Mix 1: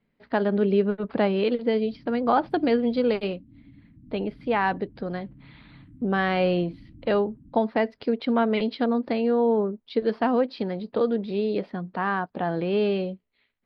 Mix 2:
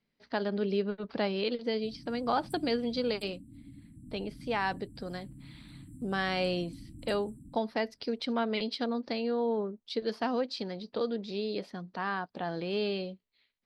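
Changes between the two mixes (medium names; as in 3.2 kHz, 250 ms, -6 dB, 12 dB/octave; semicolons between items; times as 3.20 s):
speech -9.5 dB; master: remove distance through air 410 m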